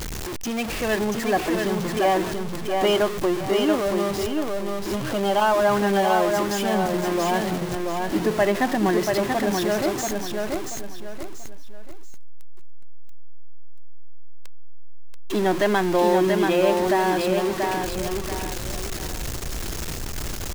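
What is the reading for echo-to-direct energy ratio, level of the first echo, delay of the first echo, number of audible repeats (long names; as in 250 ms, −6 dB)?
−3.5 dB, −4.0 dB, 684 ms, 3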